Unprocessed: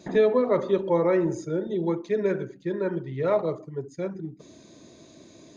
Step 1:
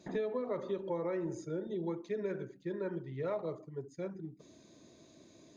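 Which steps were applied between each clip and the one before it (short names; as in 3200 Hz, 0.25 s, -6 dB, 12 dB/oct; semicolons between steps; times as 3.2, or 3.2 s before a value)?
compressor, threshold -23 dBFS, peak gain reduction 7.5 dB; gain -9 dB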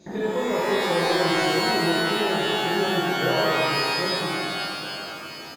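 outdoor echo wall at 270 m, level -20 dB; shimmer reverb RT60 2.4 s, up +12 st, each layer -2 dB, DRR -6.5 dB; gain +5 dB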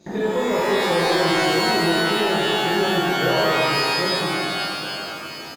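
sample leveller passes 1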